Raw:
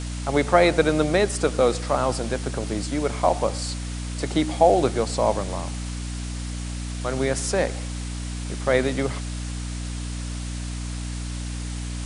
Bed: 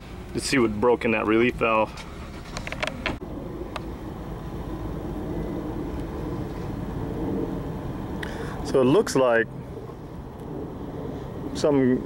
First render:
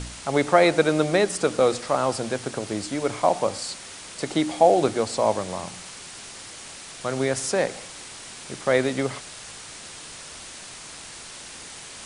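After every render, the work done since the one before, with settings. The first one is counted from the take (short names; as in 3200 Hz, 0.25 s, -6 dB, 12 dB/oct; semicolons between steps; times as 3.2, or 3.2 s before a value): de-hum 60 Hz, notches 5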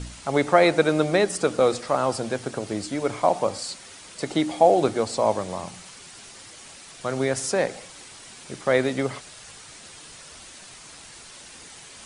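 denoiser 6 dB, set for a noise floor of -41 dBFS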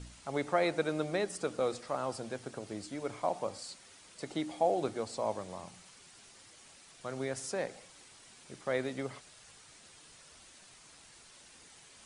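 gain -12.5 dB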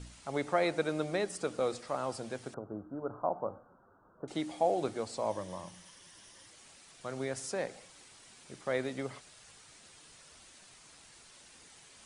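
2.54–4.28 steep low-pass 1500 Hz 96 dB/oct; 5.3–6.47 ripple EQ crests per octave 1.2, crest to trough 7 dB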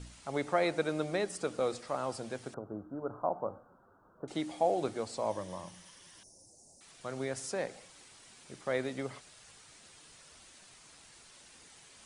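6.23–6.81 elliptic band-stop 740–5600 Hz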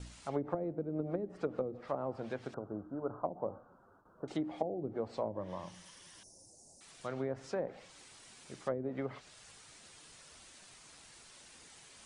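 gate with hold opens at -55 dBFS; treble ducked by the level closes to 310 Hz, closed at -28 dBFS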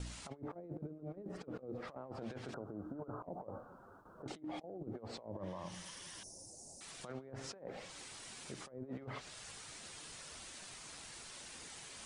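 negative-ratio compressor -43 dBFS, ratio -0.5; limiter -35 dBFS, peak gain reduction 8.5 dB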